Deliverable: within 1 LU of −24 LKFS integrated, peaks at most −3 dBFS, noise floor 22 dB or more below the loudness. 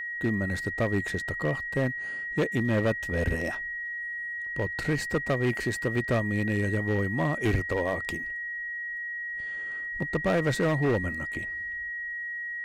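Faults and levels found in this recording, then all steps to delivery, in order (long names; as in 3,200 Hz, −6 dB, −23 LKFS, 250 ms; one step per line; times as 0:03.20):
share of clipped samples 1.9%; peaks flattened at −20.0 dBFS; interfering tone 1,900 Hz; level of the tone −32 dBFS; integrated loudness −29.0 LKFS; sample peak −20.0 dBFS; target loudness −24.0 LKFS
→ clipped peaks rebuilt −20 dBFS
notch filter 1,900 Hz, Q 30
level +5 dB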